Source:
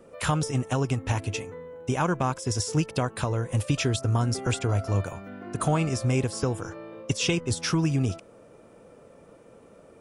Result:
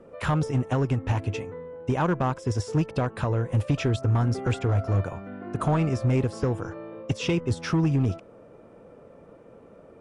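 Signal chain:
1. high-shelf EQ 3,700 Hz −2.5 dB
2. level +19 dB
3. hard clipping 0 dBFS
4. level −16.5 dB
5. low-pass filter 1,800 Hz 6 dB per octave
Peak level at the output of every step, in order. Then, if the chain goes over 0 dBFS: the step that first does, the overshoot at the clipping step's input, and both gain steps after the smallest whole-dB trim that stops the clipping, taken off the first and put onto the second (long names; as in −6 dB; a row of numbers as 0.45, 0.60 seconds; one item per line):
−11.5, +7.5, 0.0, −16.5, −16.5 dBFS
step 2, 7.5 dB
step 2 +11 dB, step 4 −8.5 dB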